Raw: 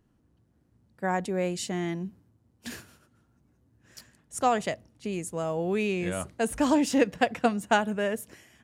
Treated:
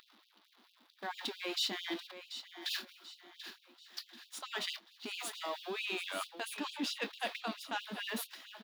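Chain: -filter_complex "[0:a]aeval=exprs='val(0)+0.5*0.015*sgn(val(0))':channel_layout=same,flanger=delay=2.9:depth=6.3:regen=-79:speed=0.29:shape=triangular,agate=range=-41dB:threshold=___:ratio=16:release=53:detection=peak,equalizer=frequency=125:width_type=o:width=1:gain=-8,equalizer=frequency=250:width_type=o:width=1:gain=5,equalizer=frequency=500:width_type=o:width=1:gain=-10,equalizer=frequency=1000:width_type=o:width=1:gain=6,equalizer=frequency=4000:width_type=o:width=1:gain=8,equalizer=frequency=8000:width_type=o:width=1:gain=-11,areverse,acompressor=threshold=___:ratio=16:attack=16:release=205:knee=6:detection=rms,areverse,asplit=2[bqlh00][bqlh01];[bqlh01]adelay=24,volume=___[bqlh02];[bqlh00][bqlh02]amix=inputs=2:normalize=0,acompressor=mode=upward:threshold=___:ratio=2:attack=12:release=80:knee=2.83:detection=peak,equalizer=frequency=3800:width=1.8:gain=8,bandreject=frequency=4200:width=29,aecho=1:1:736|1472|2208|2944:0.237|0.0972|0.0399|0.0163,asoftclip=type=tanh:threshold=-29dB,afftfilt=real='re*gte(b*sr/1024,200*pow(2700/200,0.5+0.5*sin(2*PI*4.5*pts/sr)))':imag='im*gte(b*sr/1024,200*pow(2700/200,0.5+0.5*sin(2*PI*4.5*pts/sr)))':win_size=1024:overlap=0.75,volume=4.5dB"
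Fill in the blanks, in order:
-43dB, -37dB, -13.5dB, -46dB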